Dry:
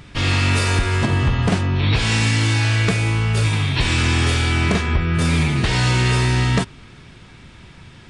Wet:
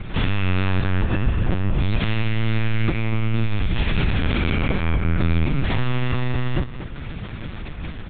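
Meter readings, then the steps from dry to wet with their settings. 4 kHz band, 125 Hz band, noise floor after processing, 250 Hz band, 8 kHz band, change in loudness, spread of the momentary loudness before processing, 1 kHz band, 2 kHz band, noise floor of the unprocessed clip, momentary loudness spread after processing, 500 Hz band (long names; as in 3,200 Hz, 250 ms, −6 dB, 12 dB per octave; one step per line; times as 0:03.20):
−9.5 dB, −4.5 dB, −33 dBFS, −2.5 dB, below −40 dB, −5.0 dB, 2 LU, −6.0 dB, −7.0 dB, −43 dBFS, 11 LU, −3.5 dB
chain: high-pass filter 57 Hz 12 dB per octave
spectral tilt −1.5 dB per octave
downward compressor 2.5 to 1, threshold −33 dBFS, peak gain reduction 15.5 dB
repeating echo 238 ms, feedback 19%, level −12 dB
linear-prediction vocoder at 8 kHz pitch kept
level +9 dB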